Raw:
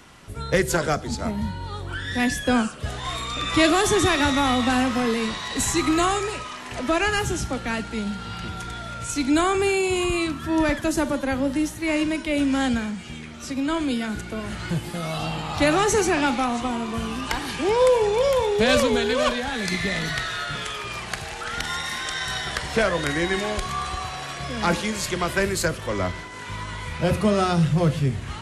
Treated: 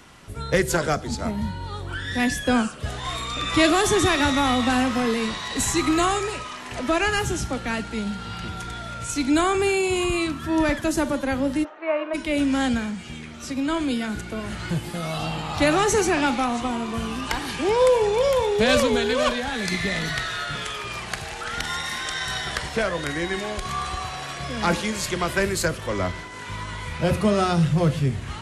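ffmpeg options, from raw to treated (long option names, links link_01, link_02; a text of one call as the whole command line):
ffmpeg -i in.wav -filter_complex "[0:a]asplit=3[link_01][link_02][link_03];[link_01]afade=type=out:start_time=11.63:duration=0.02[link_04];[link_02]highpass=frequency=430:width=0.5412,highpass=frequency=430:width=1.3066,equalizer=frequency=650:width_type=q:width=4:gain=7,equalizer=frequency=1200:width_type=q:width=4:gain=6,equalizer=frequency=2000:width_type=q:width=4:gain=-7,lowpass=frequency=2300:width=0.5412,lowpass=frequency=2300:width=1.3066,afade=type=in:start_time=11.63:duration=0.02,afade=type=out:start_time=12.13:duration=0.02[link_05];[link_03]afade=type=in:start_time=12.13:duration=0.02[link_06];[link_04][link_05][link_06]amix=inputs=3:normalize=0,asplit=3[link_07][link_08][link_09];[link_07]atrim=end=22.692[link_10];[link_08]atrim=start=22.688:end=23.652,asetpts=PTS-STARTPTS,volume=-3dB[link_11];[link_09]atrim=start=23.648[link_12];[link_10][link_11]acrossfade=duration=0.004:curve1=hsin:curve2=hsin[link_13];[link_13][link_12]acrossfade=duration=0.004:curve1=hsin:curve2=hsin" out.wav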